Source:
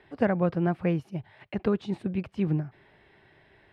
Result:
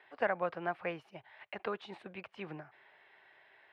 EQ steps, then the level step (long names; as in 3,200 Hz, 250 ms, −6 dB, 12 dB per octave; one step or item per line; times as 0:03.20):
high-pass filter 160 Hz 6 dB per octave
three-way crossover with the lows and the highs turned down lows −17 dB, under 530 Hz, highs −13 dB, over 3,800 Hz
low-shelf EQ 470 Hz −4 dB
0.0 dB